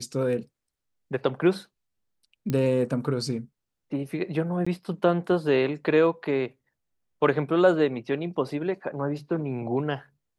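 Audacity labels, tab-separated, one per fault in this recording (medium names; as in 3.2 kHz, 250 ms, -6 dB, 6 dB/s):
2.500000	2.500000	pop -15 dBFS
4.650000	4.670000	dropout 15 ms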